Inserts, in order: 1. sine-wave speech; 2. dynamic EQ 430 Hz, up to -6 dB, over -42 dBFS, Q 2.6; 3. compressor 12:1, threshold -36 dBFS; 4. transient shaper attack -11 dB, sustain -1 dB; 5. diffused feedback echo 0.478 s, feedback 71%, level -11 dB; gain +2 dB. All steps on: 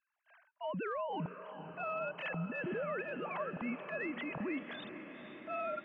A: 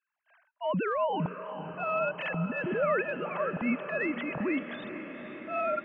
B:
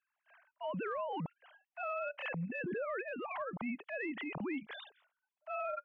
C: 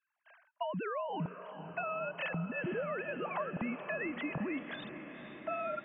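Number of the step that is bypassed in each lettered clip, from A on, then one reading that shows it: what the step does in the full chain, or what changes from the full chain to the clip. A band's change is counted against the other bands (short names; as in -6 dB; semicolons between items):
3, mean gain reduction 7.0 dB; 5, echo-to-direct -8.0 dB to none; 4, momentary loudness spread change -2 LU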